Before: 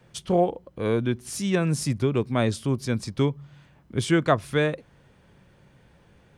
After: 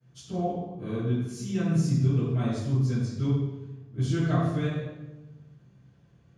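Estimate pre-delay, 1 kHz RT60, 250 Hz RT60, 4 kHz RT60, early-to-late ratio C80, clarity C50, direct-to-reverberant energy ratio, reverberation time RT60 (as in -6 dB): 3 ms, 0.95 s, 1.4 s, 0.75 s, 2.0 dB, -1.0 dB, -20.0 dB, 1.1 s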